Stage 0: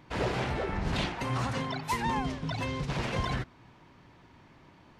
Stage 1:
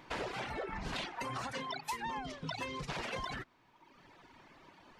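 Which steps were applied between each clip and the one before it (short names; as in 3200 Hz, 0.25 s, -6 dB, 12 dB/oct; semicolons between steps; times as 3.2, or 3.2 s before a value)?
reverb removal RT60 1.1 s; bell 86 Hz -12.5 dB 2.9 oct; compressor 6:1, threshold -40 dBFS, peak gain reduction 12.5 dB; gain +3.5 dB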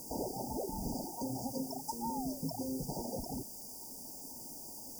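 in parallel at -9 dB: requantised 6-bit, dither triangular; on the sum: brick-wall FIR band-stop 950–4600 Hz; small resonant body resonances 250/2600 Hz, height 10 dB, ringing for 40 ms; gain -2 dB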